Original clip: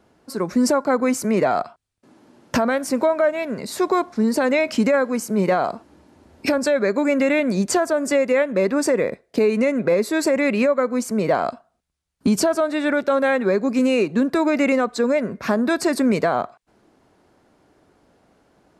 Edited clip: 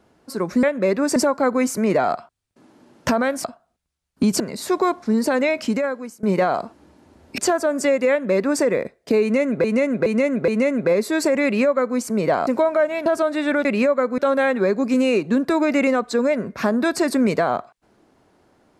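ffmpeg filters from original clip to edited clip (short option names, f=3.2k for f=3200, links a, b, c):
-filter_complex "[0:a]asplit=14[a][b][c][d][e][f][g][h][i][j][k][l][m][n];[a]atrim=end=0.632[o];[b]atrim=start=8.368:end=8.902[p];[c]atrim=start=0.628:end=2.912[q];[d]atrim=start=11.478:end=12.442[r];[e]atrim=start=3.498:end=5.33,asetpts=PTS-STARTPTS,afade=t=out:st=0.732:d=1.1:c=qsin:silence=0.0841395[s];[f]atrim=start=5.33:end=6.482,asetpts=PTS-STARTPTS,afade=t=in:d=0.004:c=hsin:silence=0.0841395[t];[g]atrim=start=7.648:end=9.912[u];[h]atrim=start=9.488:end=9.912[v];[i]atrim=start=9.488:end=9.912[w];[j]atrim=start=9.488:end=11.482[x];[k]atrim=start=2.908:end=3.502[y];[l]atrim=start=12.438:end=13.032[z];[m]atrim=start=10.448:end=10.982[aa];[n]atrim=start=13.028[ab];[o][p]acrossfade=d=0.004:c1=hsin:c2=hsin[ac];[ac][q]acrossfade=d=0.004:c1=hsin:c2=hsin[ad];[ad][r]acrossfade=d=0.004:c1=hsin:c2=hsin[ae];[s][t]concat=n=2:v=0:a=1[af];[ae][af]acrossfade=d=0.004:c1=hsin:c2=hsin[ag];[ag][u]acrossfade=d=0.004:c1=hsin:c2=hsin[ah];[ah][v]acrossfade=d=0.004:c1=hsin:c2=hsin[ai];[ai][w]acrossfade=d=0.004:c1=hsin:c2=hsin[aj];[aj][x]acrossfade=d=0.004:c1=hsin:c2=hsin[ak];[ak][y]acrossfade=d=0.004:c1=hsin:c2=hsin[al];[al][z]acrossfade=d=0.004:c1=hsin:c2=hsin[am];[am][aa]acrossfade=d=0.004:c1=hsin:c2=hsin[an];[an][ab]acrossfade=d=0.004:c1=hsin:c2=hsin"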